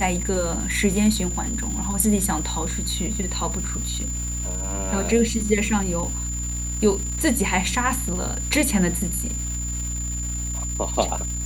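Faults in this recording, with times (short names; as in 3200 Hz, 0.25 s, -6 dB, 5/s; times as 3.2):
crackle 570/s -31 dBFS
hum 60 Hz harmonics 5 -29 dBFS
tone 7100 Hz -29 dBFS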